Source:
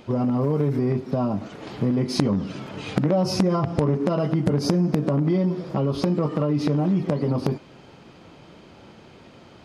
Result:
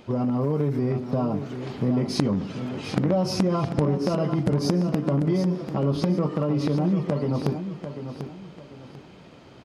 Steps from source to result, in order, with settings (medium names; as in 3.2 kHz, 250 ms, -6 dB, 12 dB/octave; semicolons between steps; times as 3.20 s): feedback delay 743 ms, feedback 31%, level -9.5 dB; trim -2 dB